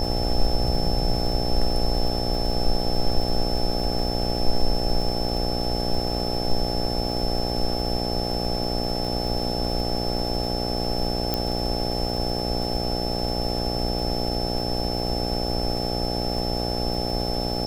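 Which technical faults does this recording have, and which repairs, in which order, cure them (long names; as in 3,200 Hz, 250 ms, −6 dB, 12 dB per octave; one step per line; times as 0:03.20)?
mains buzz 60 Hz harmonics 14 −28 dBFS
surface crackle 52 per second −31 dBFS
whistle 5,300 Hz −30 dBFS
0:11.34: click −8 dBFS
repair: click removal
notch filter 5,300 Hz, Q 30
hum removal 60 Hz, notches 14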